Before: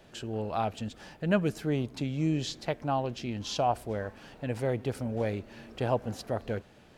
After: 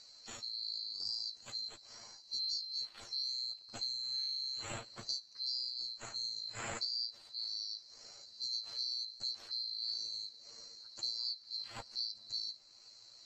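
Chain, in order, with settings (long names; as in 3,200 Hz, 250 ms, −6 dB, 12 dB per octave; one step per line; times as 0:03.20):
neighbouring bands swapped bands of 4,000 Hz
elliptic low-pass filter 11,000 Hz, stop band 40 dB
high-shelf EQ 4,800 Hz −9.5 dB
downward compressor 6 to 1, threshold −35 dBFS, peak gain reduction 10.5 dB
time stretch by overlap-add 1.9×, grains 37 ms
one half of a high-frequency compander encoder only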